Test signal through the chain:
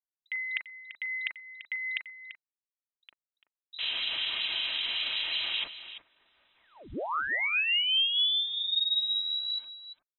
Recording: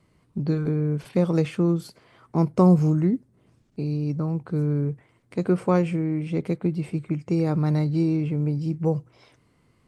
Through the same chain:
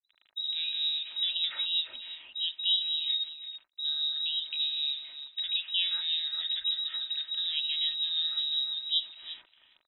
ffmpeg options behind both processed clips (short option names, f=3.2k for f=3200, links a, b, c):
-filter_complex "[0:a]firequalizer=gain_entry='entry(130,0);entry(260,10);entry(370,-3);entry(730,15);entry(1300,13);entry(2500,3)':delay=0.05:min_phase=1,acrusher=bits=7:mix=0:aa=0.000001,areverse,acompressor=threshold=-25dB:ratio=5,areverse,acrossover=split=250|2600[a][b][c];[b]adelay=60[d];[c]adelay=100[e];[a][d][e]amix=inputs=3:normalize=0,lowpass=f=3.4k:t=q:w=0.5098,lowpass=f=3.4k:t=q:w=0.6013,lowpass=f=3.4k:t=q:w=0.9,lowpass=f=3.4k:t=q:w=2.563,afreqshift=-4000,aecho=1:1:3.2:0.31,asplit=2[f][g];[g]aecho=0:1:340:0.237[h];[f][h]amix=inputs=2:normalize=0,acrossover=split=2500[i][j];[i]aeval=exprs='val(0)*(1-0.5/2+0.5/2*cos(2*PI*5.3*n/s))':c=same[k];[j]aeval=exprs='val(0)*(1-0.5/2-0.5/2*cos(2*PI*5.3*n/s))':c=same[l];[k][l]amix=inputs=2:normalize=0"